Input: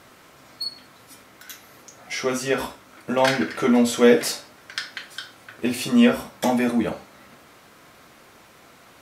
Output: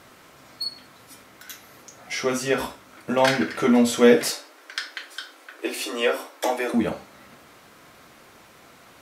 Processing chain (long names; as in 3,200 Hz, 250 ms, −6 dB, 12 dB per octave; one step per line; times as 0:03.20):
0:04.30–0:06.74: Chebyshev high-pass filter 270 Hz, order 8